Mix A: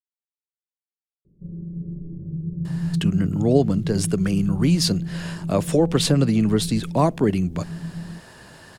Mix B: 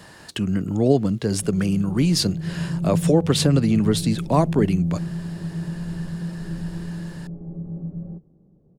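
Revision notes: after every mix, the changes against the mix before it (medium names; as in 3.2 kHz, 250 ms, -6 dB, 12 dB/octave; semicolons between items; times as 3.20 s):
speech: entry -2.65 s; background: remove boxcar filter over 60 samples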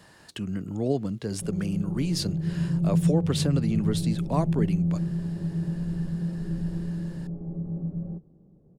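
speech -8.5 dB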